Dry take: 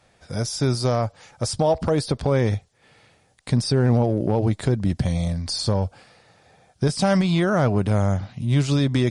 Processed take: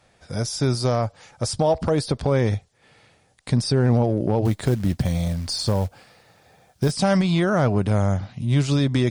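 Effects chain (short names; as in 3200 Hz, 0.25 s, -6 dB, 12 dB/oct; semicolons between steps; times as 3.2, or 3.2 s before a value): 4.45–6.92 companded quantiser 6-bit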